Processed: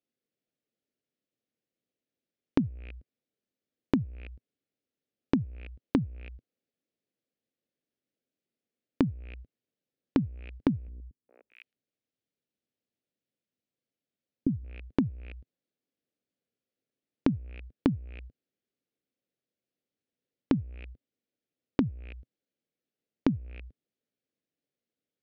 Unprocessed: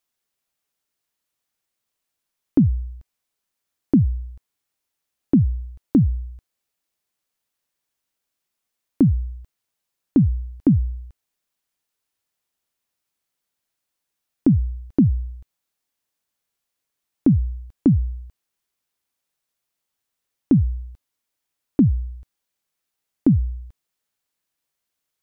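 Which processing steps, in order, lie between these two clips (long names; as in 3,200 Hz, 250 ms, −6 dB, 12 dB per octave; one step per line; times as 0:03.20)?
loose part that buzzes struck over −30 dBFS, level −21 dBFS
high-pass filter 84 Hz 6 dB per octave
notch filter 980 Hz, Q 7.1
treble cut that deepens with the level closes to 530 Hz, closed at −16 dBFS
graphic EQ with 10 bands 125 Hz +6 dB, 250 Hz +11 dB, 500 Hz +10 dB, 1,000 Hz −11 dB
noise gate −38 dBFS, range −10 dB
downward compressor 8 to 1, threshold −28 dBFS, peak gain reduction 27 dB
high-frequency loss of the air 160 metres
0:10.88–0:14.64: three-band delay without the direct sound lows, mids, highs 410/620 ms, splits 370/1,300 Hz
level +2.5 dB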